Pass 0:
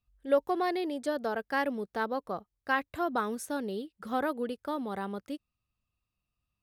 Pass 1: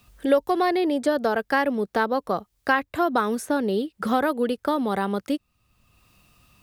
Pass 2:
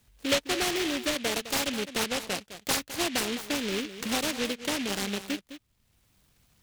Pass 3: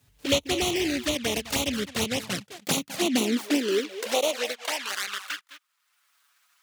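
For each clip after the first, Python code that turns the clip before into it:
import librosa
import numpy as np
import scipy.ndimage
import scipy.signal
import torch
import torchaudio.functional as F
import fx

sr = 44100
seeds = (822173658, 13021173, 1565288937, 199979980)

y1 = fx.band_squash(x, sr, depth_pct=70)
y1 = y1 * librosa.db_to_amplitude(8.5)
y2 = y1 + 10.0 ** (-12.5 / 20.0) * np.pad(y1, (int(209 * sr / 1000.0), 0))[:len(y1)]
y2 = fx.noise_mod_delay(y2, sr, seeds[0], noise_hz=2600.0, depth_ms=0.26)
y2 = y2 * librosa.db_to_amplitude(-7.0)
y3 = fx.env_flanger(y2, sr, rest_ms=7.4, full_db=-24.5)
y3 = fx.filter_sweep_highpass(y3, sr, from_hz=72.0, to_hz=1300.0, start_s=1.73, end_s=5.29, q=2.9)
y3 = y3 * librosa.db_to_amplitude(4.0)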